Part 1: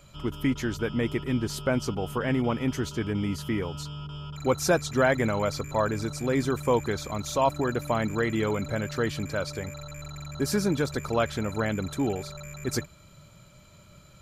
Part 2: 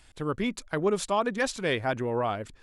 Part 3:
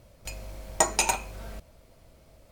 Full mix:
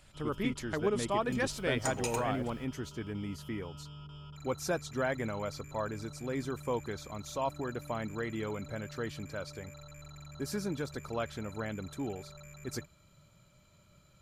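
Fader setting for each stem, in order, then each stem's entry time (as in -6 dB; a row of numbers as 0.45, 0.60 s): -10.0, -5.5, -13.5 dB; 0.00, 0.00, 1.05 s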